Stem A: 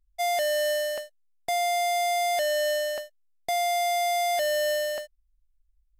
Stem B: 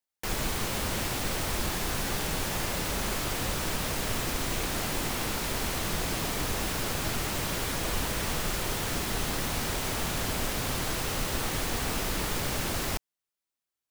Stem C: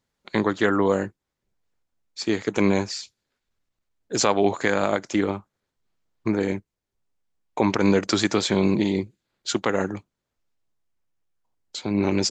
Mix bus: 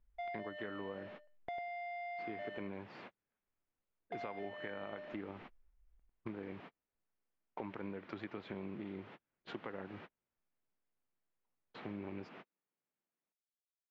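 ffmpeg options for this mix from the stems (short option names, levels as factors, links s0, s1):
-filter_complex "[0:a]acompressor=threshold=0.00251:ratio=1.5,volume=0.708,asplit=3[s0][s1][s2];[s0]atrim=end=2.58,asetpts=PTS-STARTPTS,afade=t=out:st=2.576:d=0.004:c=hsin[s3];[s1]atrim=start=2.58:end=4.12,asetpts=PTS-STARTPTS,volume=0[s4];[s2]atrim=start=4.12,asetpts=PTS-STARTPTS,afade=t=in:d=0.004:c=hsin[s5];[s3][s4][s5]concat=n=3:v=0:a=1,asplit=2[s6][s7];[s7]volume=0.668[s8];[1:a]highpass=f=170:w=0.5412,highpass=f=170:w=1.3066,adelay=350,volume=0.15[s9];[2:a]volume=0.211,asplit=2[s10][s11];[s11]apad=whole_len=628524[s12];[s9][s12]sidechaingate=range=0.00447:threshold=0.00224:ratio=16:detection=peak[s13];[s8]aecho=0:1:99|198|297:1|0.18|0.0324[s14];[s6][s13][s10][s14]amix=inputs=4:normalize=0,lowpass=f=2700:w=0.5412,lowpass=f=2700:w=1.3066,acompressor=threshold=0.00891:ratio=6"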